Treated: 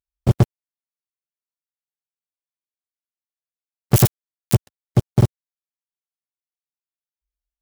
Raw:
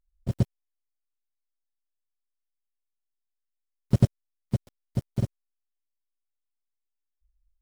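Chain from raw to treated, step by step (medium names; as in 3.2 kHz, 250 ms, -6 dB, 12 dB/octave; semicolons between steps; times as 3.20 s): 3.94–4.55 s: zero-crossing glitches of -14 dBFS; high-pass 59 Hz 12 dB/octave; waveshaping leveller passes 5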